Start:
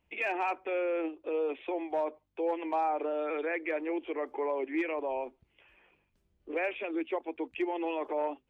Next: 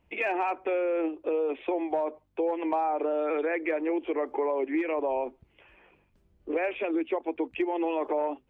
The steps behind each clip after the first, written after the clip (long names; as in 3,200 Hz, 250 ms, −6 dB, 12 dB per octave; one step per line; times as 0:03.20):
high-shelf EQ 2,100 Hz −8.5 dB
downward compressor, threshold −33 dBFS, peak gain reduction 6.5 dB
level +8.5 dB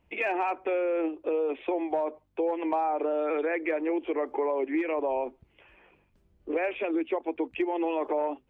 no processing that can be heard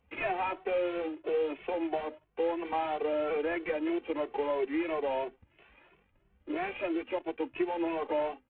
variable-slope delta modulation 16 kbit/s
barber-pole flanger 2.2 ms +3 Hz